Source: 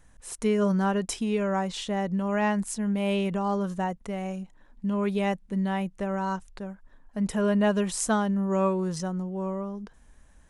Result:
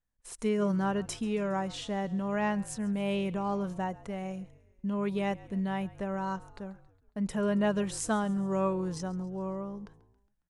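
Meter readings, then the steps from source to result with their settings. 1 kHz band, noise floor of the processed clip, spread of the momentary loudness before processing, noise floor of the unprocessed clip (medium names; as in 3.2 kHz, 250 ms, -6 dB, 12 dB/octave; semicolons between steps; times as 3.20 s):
-4.5 dB, -71 dBFS, 12 LU, -56 dBFS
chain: gate -47 dBFS, range -25 dB; treble shelf 8.5 kHz -4 dB; on a send: frequency-shifting echo 137 ms, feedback 56%, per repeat -49 Hz, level -20.5 dB; on the sum: trim -4.5 dB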